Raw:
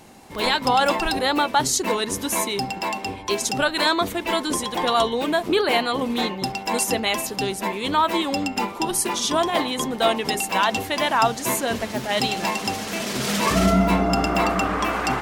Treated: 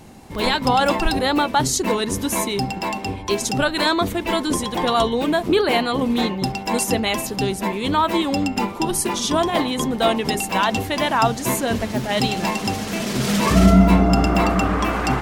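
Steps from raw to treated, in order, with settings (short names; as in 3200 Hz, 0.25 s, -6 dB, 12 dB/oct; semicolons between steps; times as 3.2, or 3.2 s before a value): low shelf 250 Hz +10.5 dB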